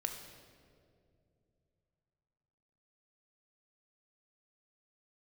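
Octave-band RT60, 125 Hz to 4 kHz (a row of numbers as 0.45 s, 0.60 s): 3.9 s, 3.2 s, 3.0 s, 2.0 s, 1.6 s, 1.4 s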